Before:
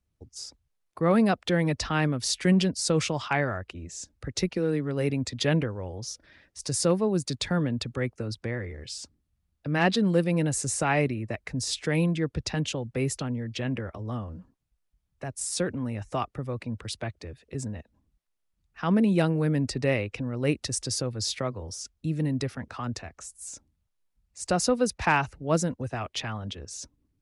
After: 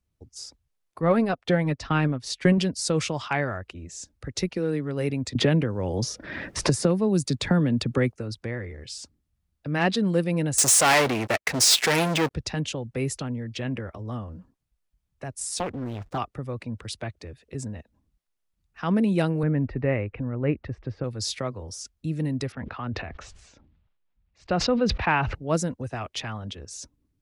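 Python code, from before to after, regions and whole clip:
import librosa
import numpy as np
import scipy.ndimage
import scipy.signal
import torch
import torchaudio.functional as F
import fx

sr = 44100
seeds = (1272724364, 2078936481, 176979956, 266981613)

y = fx.chain(x, sr, fx.lowpass(hz=3300.0, slope=6),
    fx.transient(attack_db=6, sustain_db=-8),
    fx.comb(ms=7.3, depth=0.34), at=(1.01, 2.58))
y = fx.chain(y, sr, fx.peak_eq(hz=200.0, db=5.0, octaves=2.1),
    fx.band_squash(depth_pct=100), at=(5.35, 8.12))
y = fx.chain(y, sr, fx.leveller(passes=5),
    fx.highpass(hz=580.0, slope=6), at=(10.58, 12.31))
y = fx.chain(y, sr, fx.backlash(play_db=-45.5),
    fx.doppler_dist(depth_ms=0.9), at=(15.57, 16.18))
y = fx.chain(y, sr, fx.lowpass(hz=2200.0, slope=24),
    fx.low_shelf(hz=68.0, db=11.0), at=(19.43, 21.04))
y = fx.chain(y, sr, fx.lowpass(hz=3500.0, slope=24),
    fx.sustainer(db_per_s=45.0), at=(22.52, 25.35))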